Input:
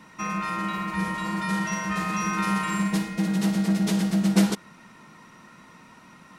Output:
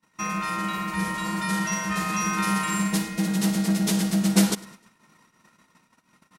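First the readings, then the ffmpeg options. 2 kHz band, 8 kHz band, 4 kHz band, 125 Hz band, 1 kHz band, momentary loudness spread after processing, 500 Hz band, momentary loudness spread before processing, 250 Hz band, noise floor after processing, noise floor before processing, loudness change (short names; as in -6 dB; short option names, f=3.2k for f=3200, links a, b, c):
+1.0 dB, +6.5 dB, +4.0 dB, 0.0 dB, +0.5 dB, 6 LU, 0.0 dB, 6 LU, 0.0 dB, -66 dBFS, -51 dBFS, +0.5 dB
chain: -filter_complex "[0:a]agate=range=-32dB:threshold=-47dB:ratio=16:detection=peak,highshelf=f=5k:g=10,asplit=2[a][b];[b]aecho=0:1:102|204|306:0.0794|0.0334|0.014[c];[a][c]amix=inputs=2:normalize=0"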